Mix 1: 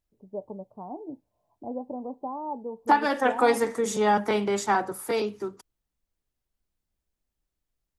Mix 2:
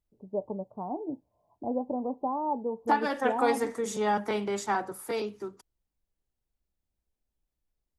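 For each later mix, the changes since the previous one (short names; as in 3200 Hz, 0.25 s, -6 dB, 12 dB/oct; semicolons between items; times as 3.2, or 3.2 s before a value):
first voice +3.5 dB; second voice -5.0 dB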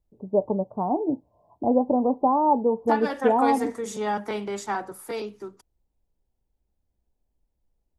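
first voice +10.0 dB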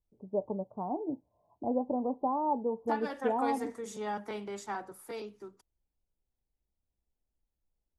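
first voice -10.0 dB; second voice -9.0 dB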